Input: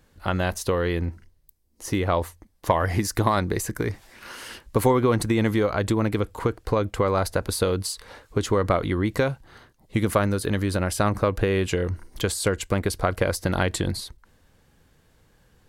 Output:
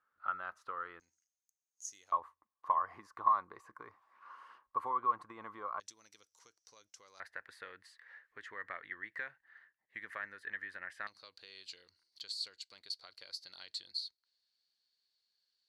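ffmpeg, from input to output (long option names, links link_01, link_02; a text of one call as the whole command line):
ffmpeg -i in.wav -af "asetnsamples=nb_out_samples=441:pad=0,asendcmd='1 bandpass f 6500;2.12 bandpass f 1100;5.8 bandpass f 5800;7.2 bandpass f 1800;11.07 bandpass f 4400',bandpass=frequency=1300:width_type=q:width=12:csg=0" out.wav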